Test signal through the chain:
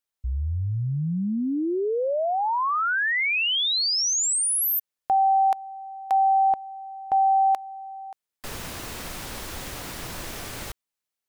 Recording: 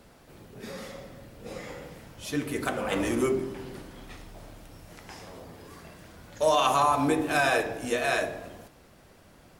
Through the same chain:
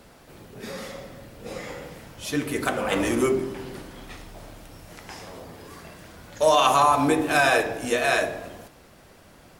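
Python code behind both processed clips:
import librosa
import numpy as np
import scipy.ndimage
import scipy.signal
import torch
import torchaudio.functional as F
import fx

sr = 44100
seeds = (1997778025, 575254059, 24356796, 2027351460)

y = fx.low_shelf(x, sr, hz=380.0, db=-2.5)
y = y * 10.0 ** (5.0 / 20.0)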